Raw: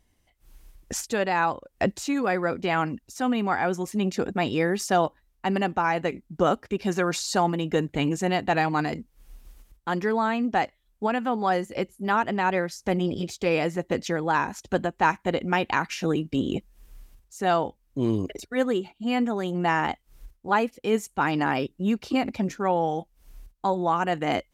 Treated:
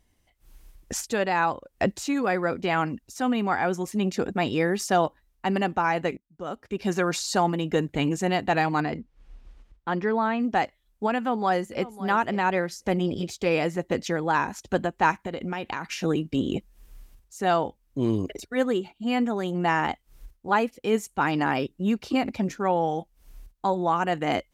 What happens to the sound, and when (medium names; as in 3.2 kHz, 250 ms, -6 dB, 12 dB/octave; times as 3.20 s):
6.17–6.85 s: fade in quadratic, from -24 dB
8.80–10.40 s: Bessel low-pass 3.1 kHz
11.18–11.91 s: echo throw 550 ms, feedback 15%, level -16 dB
15.18–15.87 s: compression 5:1, threshold -27 dBFS